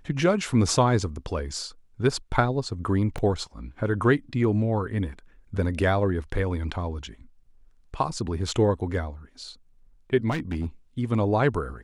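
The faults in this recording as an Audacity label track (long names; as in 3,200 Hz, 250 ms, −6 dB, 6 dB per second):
3.180000	3.180000	drop-out 4 ms
10.300000	10.660000	clipping −23.5 dBFS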